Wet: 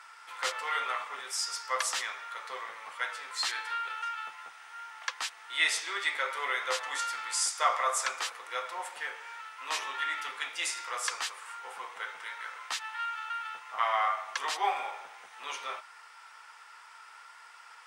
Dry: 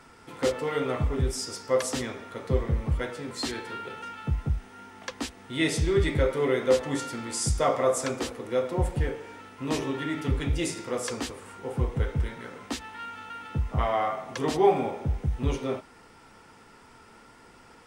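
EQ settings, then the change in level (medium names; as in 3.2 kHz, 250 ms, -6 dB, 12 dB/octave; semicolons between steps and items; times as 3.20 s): high-pass 1.1 kHz 24 dB/octave; tilt EQ -4.5 dB/octave; treble shelf 3.5 kHz +9.5 dB; +6.0 dB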